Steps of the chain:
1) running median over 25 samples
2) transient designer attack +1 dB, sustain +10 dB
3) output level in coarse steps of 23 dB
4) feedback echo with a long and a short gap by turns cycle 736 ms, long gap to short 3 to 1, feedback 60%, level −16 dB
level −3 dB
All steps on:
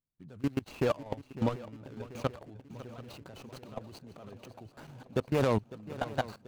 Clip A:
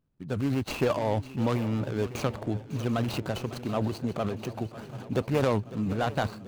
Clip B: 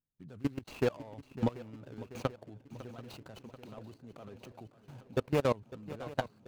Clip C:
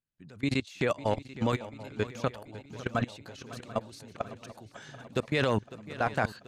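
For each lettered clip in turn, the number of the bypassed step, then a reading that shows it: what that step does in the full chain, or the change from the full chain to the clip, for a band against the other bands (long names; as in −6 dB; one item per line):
3, change in crest factor −3.5 dB
2, change in integrated loudness −2.0 LU
1, 2 kHz band +5.5 dB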